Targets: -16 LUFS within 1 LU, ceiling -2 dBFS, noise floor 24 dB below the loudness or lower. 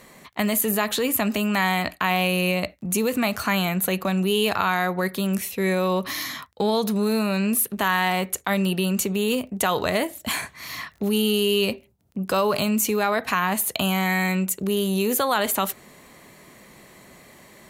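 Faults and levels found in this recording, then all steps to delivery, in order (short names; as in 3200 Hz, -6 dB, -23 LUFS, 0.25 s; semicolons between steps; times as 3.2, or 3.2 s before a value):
ticks 17/s; loudness -23.0 LUFS; peak -7.0 dBFS; loudness target -16.0 LUFS
-> de-click; gain +7 dB; limiter -2 dBFS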